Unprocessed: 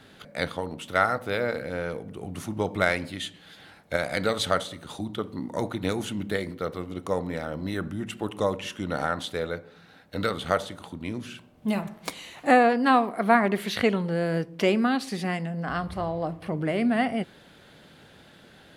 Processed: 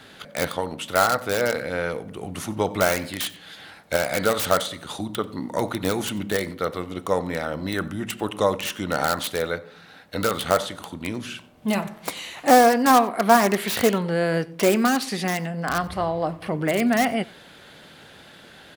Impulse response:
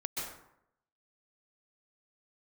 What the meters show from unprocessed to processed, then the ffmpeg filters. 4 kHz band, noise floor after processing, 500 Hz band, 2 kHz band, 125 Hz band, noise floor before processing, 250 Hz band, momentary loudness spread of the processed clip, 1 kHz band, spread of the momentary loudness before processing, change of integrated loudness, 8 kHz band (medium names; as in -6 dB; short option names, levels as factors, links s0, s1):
+5.0 dB, -48 dBFS, +4.5 dB, +2.5 dB, +1.5 dB, -53 dBFS, +2.5 dB, 14 LU, +5.0 dB, 14 LU, +4.0 dB, +12.0 dB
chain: -filter_complex "[0:a]acrossover=split=1400[s0][s1];[s1]aeval=exprs='(mod(25.1*val(0)+1,2)-1)/25.1':c=same[s2];[s0][s2]amix=inputs=2:normalize=0,lowshelf=f=470:g=-6.5,aecho=1:1:92:0.075,volume=2.37"